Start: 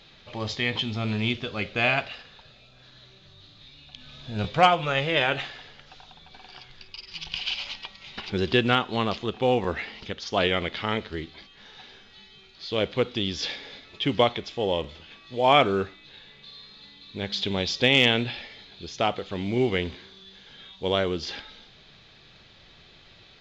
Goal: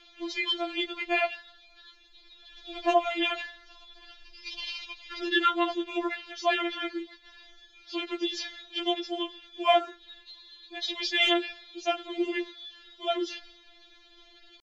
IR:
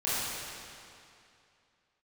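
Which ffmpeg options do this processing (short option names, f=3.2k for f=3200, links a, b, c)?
-af "atempo=1.6,afftfilt=real='re*4*eq(mod(b,16),0)':imag='im*4*eq(mod(b,16),0)':win_size=2048:overlap=0.75"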